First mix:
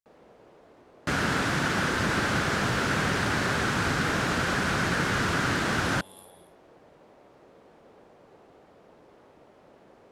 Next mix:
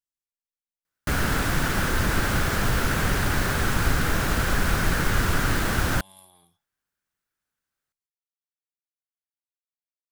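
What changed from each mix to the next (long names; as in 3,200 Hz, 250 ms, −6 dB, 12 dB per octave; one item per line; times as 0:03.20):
first sound: muted
second sound: remove band-pass filter 130–6,700 Hz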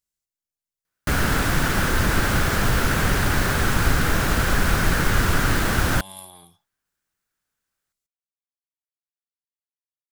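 speech +11.5 dB
background +3.0 dB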